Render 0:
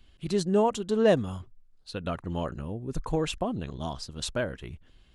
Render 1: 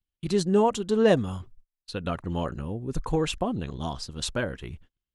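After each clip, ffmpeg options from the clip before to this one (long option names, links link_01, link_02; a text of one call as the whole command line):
ffmpeg -i in.wav -af "bandreject=frequency=630:width=13,agate=range=-35dB:threshold=-49dB:ratio=16:detection=peak,volume=2.5dB" out.wav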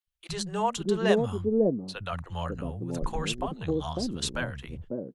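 ffmpeg -i in.wav -filter_complex "[0:a]acrossover=split=160|560[link_01][link_02][link_03];[link_01]adelay=60[link_04];[link_02]adelay=550[link_05];[link_04][link_05][link_03]amix=inputs=3:normalize=0" out.wav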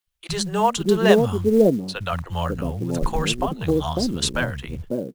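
ffmpeg -i in.wav -af "acrusher=bits=7:mode=log:mix=0:aa=0.000001,volume=8dB" out.wav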